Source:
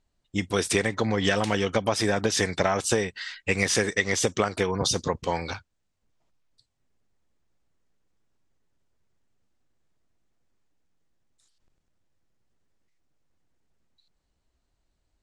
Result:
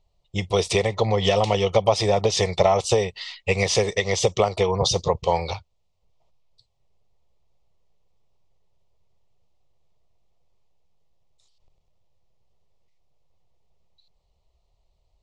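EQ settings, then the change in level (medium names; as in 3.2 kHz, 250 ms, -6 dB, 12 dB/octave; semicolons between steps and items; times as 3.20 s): low-pass 4.5 kHz 12 dB/octave; static phaser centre 650 Hz, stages 4; +8.0 dB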